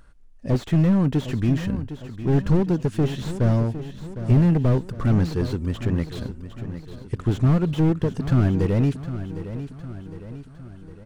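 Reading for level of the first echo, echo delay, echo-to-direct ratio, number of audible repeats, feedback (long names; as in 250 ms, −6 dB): −12.0 dB, 758 ms, −10.5 dB, 5, 52%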